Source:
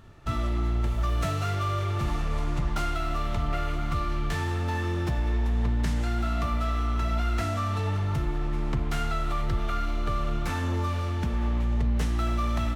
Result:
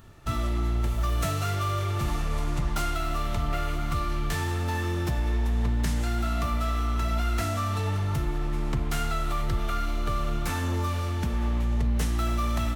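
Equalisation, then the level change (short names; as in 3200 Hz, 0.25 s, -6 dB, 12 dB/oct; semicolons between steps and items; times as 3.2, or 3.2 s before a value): high shelf 7500 Hz +12 dB; 0.0 dB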